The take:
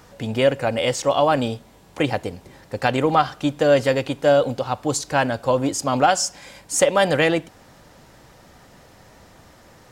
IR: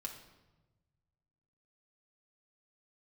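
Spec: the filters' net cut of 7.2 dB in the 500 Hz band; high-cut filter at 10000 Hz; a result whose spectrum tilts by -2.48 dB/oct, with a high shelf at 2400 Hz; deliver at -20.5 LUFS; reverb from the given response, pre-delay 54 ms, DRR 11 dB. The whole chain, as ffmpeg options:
-filter_complex "[0:a]lowpass=10k,equalizer=f=500:t=o:g=-9,highshelf=f=2.4k:g=8.5,asplit=2[a][b];[1:a]atrim=start_sample=2205,adelay=54[c];[b][c]afir=irnorm=-1:irlink=0,volume=-9dB[d];[a][d]amix=inputs=2:normalize=0"

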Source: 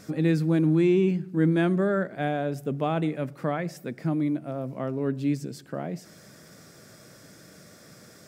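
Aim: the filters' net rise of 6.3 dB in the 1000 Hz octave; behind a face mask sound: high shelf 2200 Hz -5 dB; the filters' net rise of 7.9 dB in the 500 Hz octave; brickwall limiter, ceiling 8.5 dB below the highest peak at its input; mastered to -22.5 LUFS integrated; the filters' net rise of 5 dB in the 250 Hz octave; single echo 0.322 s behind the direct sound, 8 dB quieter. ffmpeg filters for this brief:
-af "equalizer=f=250:t=o:g=3,equalizer=f=500:t=o:g=9,equalizer=f=1k:t=o:g=5.5,alimiter=limit=-14.5dB:level=0:latency=1,highshelf=f=2.2k:g=-5,aecho=1:1:322:0.398,volume=1dB"

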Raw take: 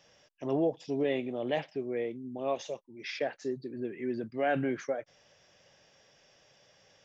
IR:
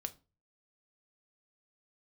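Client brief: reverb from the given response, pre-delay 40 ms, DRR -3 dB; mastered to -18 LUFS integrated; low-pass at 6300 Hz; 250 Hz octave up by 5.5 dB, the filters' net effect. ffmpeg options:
-filter_complex "[0:a]lowpass=6.3k,equalizer=f=250:t=o:g=6.5,asplit=2[a][b];[1:a]atrim=start_sample=2205,adelay=40[c];[b][c]afir=irnorm=-1:irlink=0,volume=4.5dB[d];[a][d]amix=inputs=2:normalize=0,volume=7.5dB"

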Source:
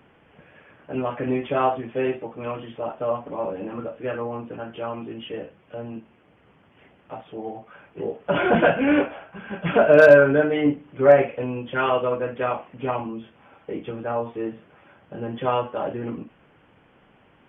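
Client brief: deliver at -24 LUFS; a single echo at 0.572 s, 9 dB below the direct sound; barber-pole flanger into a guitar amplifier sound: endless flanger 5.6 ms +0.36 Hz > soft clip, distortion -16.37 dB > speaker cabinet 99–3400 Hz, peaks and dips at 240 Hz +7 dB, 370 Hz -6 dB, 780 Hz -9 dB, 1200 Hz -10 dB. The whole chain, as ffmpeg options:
-filter_complex "[0:a]aecho=1:1:572:0.355,asplit=2[a][b];[b]adelay=5.6,afreqshift=0.36[c];[a][c]amix=inputs=2:normalize=1,asoftclip=threshold=-8.5dB,highpass=99,equalizer=f=240:t=q:w=4:g=7,equalizer=f=370:t=q:w=4:g=-6,equalizer=f=780:t=q:w=4:g=-9,equalizer=f=1.2k:t=q:w=4:g=-10,lowpass=f=3.4k:w=0.5412,lowpass=f=3.4k:w=1.3066,volume=4dB"

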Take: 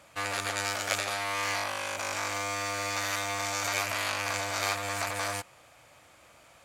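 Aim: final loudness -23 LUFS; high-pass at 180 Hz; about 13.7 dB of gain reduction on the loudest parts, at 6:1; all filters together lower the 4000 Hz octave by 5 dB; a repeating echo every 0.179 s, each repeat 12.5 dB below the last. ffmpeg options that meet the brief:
-af "highpass=180,equalizer=f=4k:t=o:g=-6.5,acompressor=threshold=-42dB:ratio=6,aecho=1:1:179|358|537:0.237|0.0569|0.0137,volume=20.5dB"

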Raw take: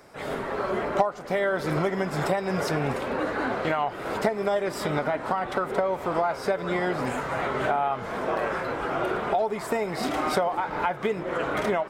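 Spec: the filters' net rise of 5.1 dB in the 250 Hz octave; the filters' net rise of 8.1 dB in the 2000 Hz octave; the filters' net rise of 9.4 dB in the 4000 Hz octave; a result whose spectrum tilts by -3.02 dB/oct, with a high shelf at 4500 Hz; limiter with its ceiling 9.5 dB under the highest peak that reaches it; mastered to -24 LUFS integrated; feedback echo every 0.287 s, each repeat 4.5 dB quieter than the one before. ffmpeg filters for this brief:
-af "equalizer=f=250:t=o:g=7,equalizer=f=2k:t=o:g=8,equalizer=f=4k:t=o:g=7,highshelf=f=4.5k:g=4.5,alimiter=limit=-15dB:level=0:latency=1,aecho=1:1:287|574|861|1148|1435|1722|2009|2296|2583:0.596|0.357|0.214|0.129|0.0772|0.0463|0.0278|0.0167|0.01,volume=-0.5dB"

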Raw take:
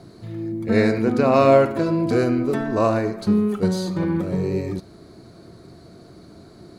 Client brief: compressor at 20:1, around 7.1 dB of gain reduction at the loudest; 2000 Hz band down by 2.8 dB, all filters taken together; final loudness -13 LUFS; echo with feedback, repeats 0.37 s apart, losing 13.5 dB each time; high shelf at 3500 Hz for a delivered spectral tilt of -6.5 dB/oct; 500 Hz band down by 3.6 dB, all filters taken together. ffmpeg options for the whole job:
-af "equalizer=f=500:t=o:g=-4.5,equalizer=f=2k:t=o:g=-5.5,highshelf=f=3.5k:g=7.5,acompressor=threshold=-20dB:ratio=20,aecho=1:1:370|740:0.211|0.0444,volume=13dB"

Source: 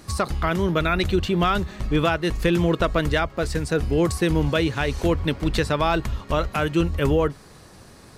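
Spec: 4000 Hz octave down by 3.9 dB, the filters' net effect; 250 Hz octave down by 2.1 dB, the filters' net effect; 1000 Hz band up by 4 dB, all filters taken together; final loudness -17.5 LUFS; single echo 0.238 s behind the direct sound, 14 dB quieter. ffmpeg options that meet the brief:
-af "equalizer=f=250:t=o:g=-4,equalizer=f=1k:t=o:g=6,equalizer=f=4k:t=o:g=-5.5,aecho=1:1:238:0.2,volume=5dB"

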